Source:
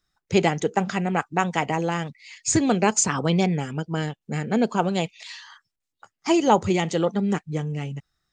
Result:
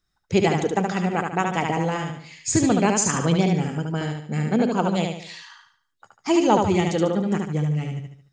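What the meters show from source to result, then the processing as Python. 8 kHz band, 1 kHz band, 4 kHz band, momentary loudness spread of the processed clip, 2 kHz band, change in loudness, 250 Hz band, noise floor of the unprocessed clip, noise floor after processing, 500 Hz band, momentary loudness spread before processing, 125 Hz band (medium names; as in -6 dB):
-0.5 dB, 0.0 dB, 0.0 dB, 11 LU, 0.0 dB, +1.0 dB, +2.0 dB, -83 dBFS, -73 dBFS, +1.0 dB, 12 LU, +3.0 dB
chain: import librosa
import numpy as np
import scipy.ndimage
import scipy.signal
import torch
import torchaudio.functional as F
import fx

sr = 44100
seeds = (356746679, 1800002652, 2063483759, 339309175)

y = fx.low_shelf(x, sr, hz=320.0, db=4.0)
y = fx.echo_feedback(y, sr, ms=73, feedback_pct=41, wet_db=-4.0)
y = y * librosa.db_to_amplitude(-2.0)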